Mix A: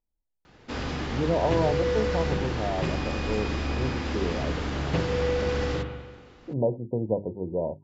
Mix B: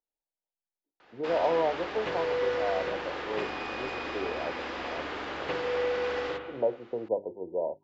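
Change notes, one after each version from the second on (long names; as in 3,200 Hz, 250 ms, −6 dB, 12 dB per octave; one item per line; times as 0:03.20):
background: entry +0.55 s
master: add three-way crossover with the lows and the highs turned down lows −23 dB, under 360 Hz, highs −14 dB, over 4,000 Hz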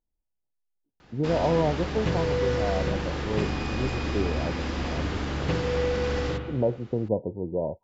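speech: remove mains-hum notches 50/100/150/200/250/300/350/400 Hz
master: remove three-way crossover with the lows and the highs turned down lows −23 dB, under 360 Hz, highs −14 dB, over 4,000 Hz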